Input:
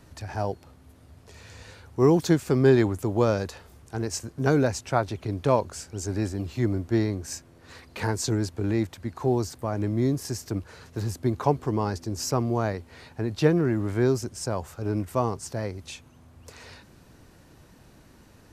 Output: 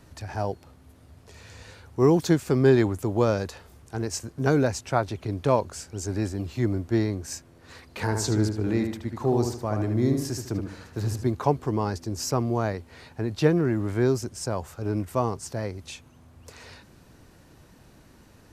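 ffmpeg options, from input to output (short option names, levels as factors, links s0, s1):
-filter_complex "[0:a]asettb=1/sr,asplit=3[s0][s1][s2];[s0]atrim=end=8.044[s3];[s1]atrim=start=8.04:end=11.31,asetpts=PTS-STARTPTS,afade=t=in:d=0.004:c=qsin,afade=t=out:st=3.266:d=0.004:c=qsin,asplit=2[s4][s5];[s5]adelay=75,lowpass=f=3400:p=1,volume=0.562,asplit=2[s6][s7];[s7]adelay=75,lowpass=f=3400:p=1,volume=0.39,asplit=2[s8][s9];[s9]adelay=75,lowpass=f=3400:p=1,volume=0.39,asplit=2[s10][s11];[s11]adelay=75,lowpass=f=3400:p=1,volume=0.39,asplit=2[s12][s13];[s13]adelay=75,lowpass=f=3400:p=1,volume=0.39[s14];[s4][s6][s8][s10][s12][s14]amix=inputs=6:normalize=0,atrim=end_sample=144207[s15];[s2]atrim=start=11.306[s16];[s3][s15]acrossfade=d=0.004:c1=hsin:c2=qsin[s17];[s17][s16]acrossfade=d=0.004:c1=qsin:c2=hsin"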